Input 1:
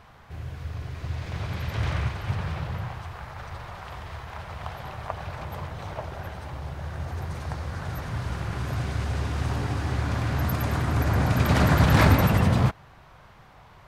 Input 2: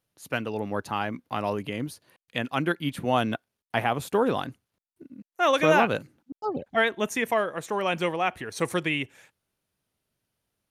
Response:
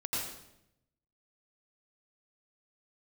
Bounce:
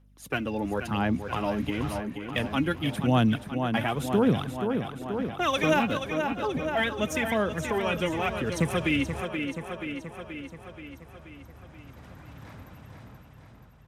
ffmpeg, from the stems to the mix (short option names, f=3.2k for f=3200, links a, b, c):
-filter_complex "[0:a]volume=-10.5dB,asplit=2[a][b];[b]volume=-18.5dB[c];[1:a]highpass=180,bass=f=250:g=11,treble=f=4k:g=-4,aphaser=in_gain=1:out_gain=1:delay=3.7:decay=0.57:speed=0.94:type=sinusoidal,volume=1dB,asplit=3[d][e][f];[e]volume=-9.5dB[g];[f]apad=whole_len=611977[h];[a][h]sidechaingate=range=-33dB:threshold=-42dB:ratio=16:detection=peak[i];[c][g]amix=inputs=2:normalize=0,aecho=0:1:479|958|1437|1916|2395|2874|3353|3832|4311:1|0.59|0.348|0.205|0.121|0.0715|0.0422|0.0249|0.0147[j];[i][d][j]amix=inputs=3:normalize=0,bandreject=f=4.4k:w=13,acrossover=split=170|3000[k][l][m];[l]acompressor=threshold=-30dB:ratio=2[n];[k][n][m]amix=inputs=3:normalize=0,aeval=exprs='val(0)+0.00141*(sin(2*PI*50*n/s)+sin(2*PI*2*50*n/s)/2+sin(2*PI*3*50*n/s)/3+sin(2*PI*4*50*n/s)/4+sin(2*PI*5*50*n/s)/5)':c=same"